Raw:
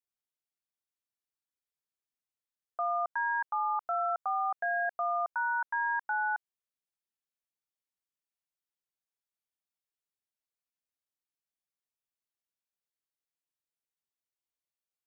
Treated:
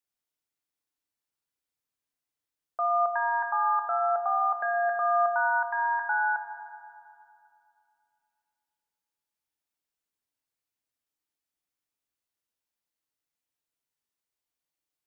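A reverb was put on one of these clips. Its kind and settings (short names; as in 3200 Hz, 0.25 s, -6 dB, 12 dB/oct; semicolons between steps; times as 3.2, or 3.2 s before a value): FDN reverb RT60 2.6 s, low-frequency decay 1.45×, high-frequency decay 0.5×, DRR 5 dB; gain +3 dB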